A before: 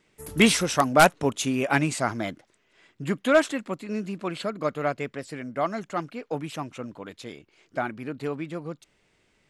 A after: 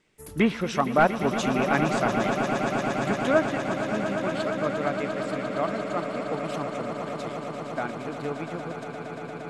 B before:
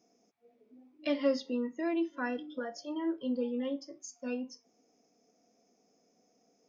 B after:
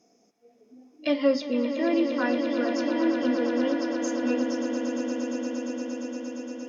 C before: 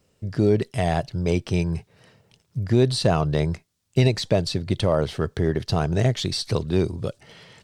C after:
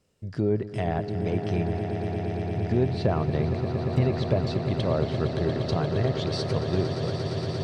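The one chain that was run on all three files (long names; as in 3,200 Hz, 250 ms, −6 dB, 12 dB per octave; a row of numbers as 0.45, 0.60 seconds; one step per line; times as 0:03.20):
treble cut that deepens with the level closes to 1,700 Hz, closed at −16 dBFS
echo that builds up and dies away 116 ms, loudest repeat 8, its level −11.5 dB
loudness normalisation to −27 LKFS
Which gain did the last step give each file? −2.5, +6.5, −5.5 decibels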